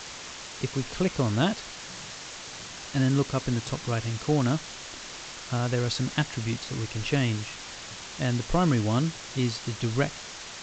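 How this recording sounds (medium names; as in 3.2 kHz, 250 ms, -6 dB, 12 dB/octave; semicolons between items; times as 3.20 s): a quantiser's noise floor 6-bit, dither triangular; G.722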